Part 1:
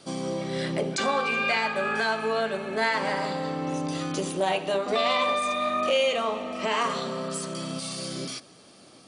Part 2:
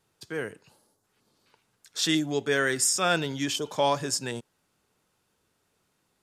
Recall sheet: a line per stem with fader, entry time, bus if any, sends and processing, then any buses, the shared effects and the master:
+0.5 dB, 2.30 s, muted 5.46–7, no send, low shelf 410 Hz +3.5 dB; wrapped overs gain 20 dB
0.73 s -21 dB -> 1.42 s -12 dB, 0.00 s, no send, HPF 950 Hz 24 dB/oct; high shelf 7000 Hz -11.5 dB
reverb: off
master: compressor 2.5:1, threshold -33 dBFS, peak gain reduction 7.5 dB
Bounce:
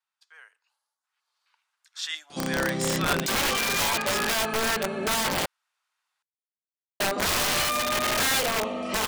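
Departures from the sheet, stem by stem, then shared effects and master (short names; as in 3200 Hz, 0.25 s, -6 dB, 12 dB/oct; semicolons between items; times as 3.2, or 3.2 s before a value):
stem 2 -21.0 dB -> -11.5 dB; master: missing compressor 2.5:1, threshold -33 dBFS, peak gain reduction 7.5 dB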